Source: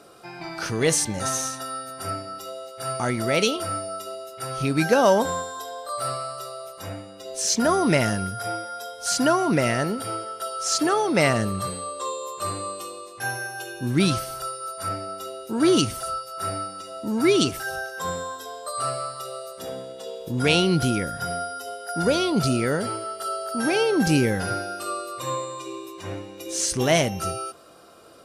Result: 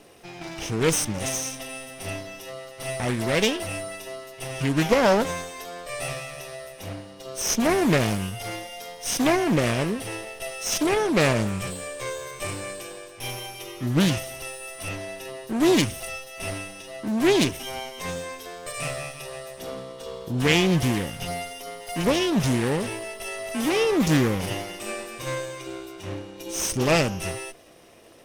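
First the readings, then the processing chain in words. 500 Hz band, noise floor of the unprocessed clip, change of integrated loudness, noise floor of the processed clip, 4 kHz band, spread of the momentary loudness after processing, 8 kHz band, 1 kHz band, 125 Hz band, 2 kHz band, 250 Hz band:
−1.0 dB, −42 dBFS, −1.0 dB, −43 dBFS, −1.0 dB, 16 LU, −1.5 dB, −4.5 dB, +0.5 dB, 0.0 dB, 0.0 dB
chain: lower of the sound and its delayed copy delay 0.34 ms
highs frequency-modulated by the lows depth 0.38 ms

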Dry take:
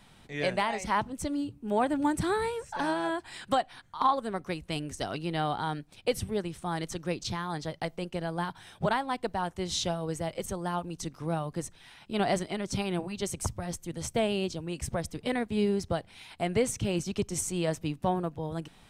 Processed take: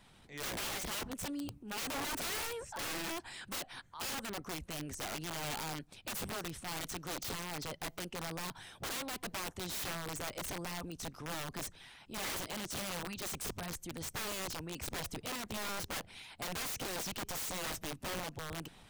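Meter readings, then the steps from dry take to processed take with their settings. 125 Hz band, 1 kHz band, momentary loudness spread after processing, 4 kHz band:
−11.5 dB, −12.0 dB, 5 LU, −2.0 dB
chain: harmonic and percussive parts rebalanced harmonic −7 dB
transient designer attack −6 dB, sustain +4 dB
wrap-around overflow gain 32.5 dB
level −1.5 dB

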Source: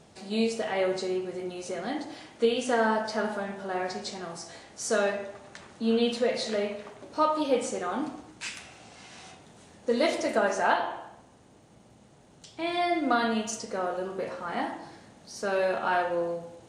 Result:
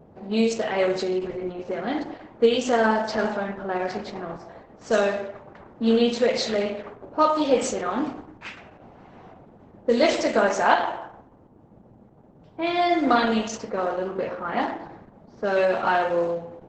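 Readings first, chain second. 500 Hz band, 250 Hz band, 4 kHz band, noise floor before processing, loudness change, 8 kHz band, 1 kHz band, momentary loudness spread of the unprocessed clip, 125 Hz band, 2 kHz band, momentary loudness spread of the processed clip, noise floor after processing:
+5.5 dB, +5.5 dB, +4.0 dB, −56 dBFS, +5.5 dB, +1.0 dB, +5.0 dB, 17 LU, +5.5 dB, +4.0 dB, 15 LU, −52 dBFS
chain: low-pass that shuts in the quiet parts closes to 780 Hz, open at −22.5 dBFS
level +6 dB
Opus 10 kbit/s 48,000 Hz

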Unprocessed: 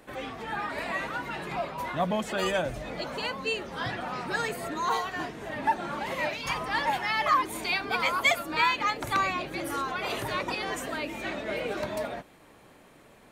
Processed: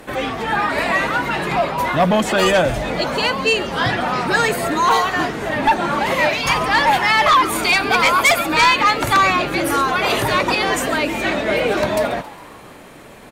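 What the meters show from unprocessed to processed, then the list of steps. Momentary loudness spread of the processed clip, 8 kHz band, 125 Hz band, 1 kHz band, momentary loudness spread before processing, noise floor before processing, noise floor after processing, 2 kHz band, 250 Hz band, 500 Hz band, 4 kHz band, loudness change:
7 LU, +14.5 dB, +13.5 dB, +12.5 dB, 10 LU, −55 dBFS, −40 dBFS, +13.0 dB, +13.5 dB, +13.5 dB, +13.0 dB, +13.0 dB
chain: echo with shifted repeats 137 ms, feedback 61%, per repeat +120 Hz, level −19 dB
sine wavefolder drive 7 dB, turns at −12 dBFS
level +3.5 dB

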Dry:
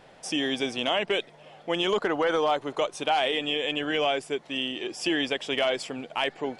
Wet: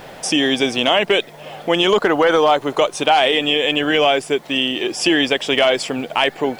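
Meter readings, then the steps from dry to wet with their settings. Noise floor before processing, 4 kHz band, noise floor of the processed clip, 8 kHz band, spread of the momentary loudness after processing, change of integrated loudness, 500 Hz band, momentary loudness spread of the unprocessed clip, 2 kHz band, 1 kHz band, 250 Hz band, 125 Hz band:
−53 dBFS, +10.5 dB, −40 dBFS, +12.5 dB, 6 LU, +10.5 dB, +10.5 dB, 7 LU, +10.5 dB, +10.5 dB, +11.0 dB, +11.0 dB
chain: in parallel at +1.5 dB: downward compressor, threshold −40 dBFS, peak gain reduction 18 dB
on the sum: bit reduction 10 bits
level +9 dB

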